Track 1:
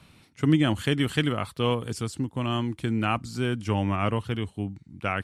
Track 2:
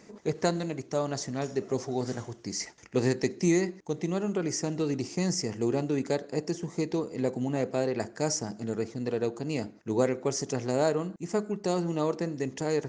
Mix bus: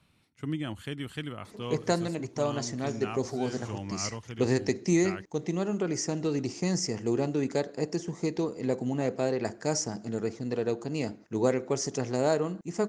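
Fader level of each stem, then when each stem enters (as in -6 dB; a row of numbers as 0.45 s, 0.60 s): -12.0 dB, 0.0 dB; 0.00 s, 1.45 s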